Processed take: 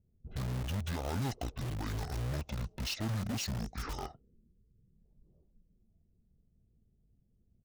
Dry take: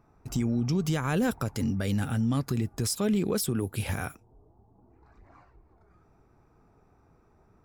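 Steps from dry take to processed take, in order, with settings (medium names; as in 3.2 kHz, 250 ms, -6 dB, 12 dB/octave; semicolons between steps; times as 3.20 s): level-controlled noise filter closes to 310 Hz, open at -26 dBFS; bass shelf 270 Hz -4 dB; pitch shift -11 st; in parallel at -5 dB: integer overflow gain 29 dB; on the sum: trim -6.5 dB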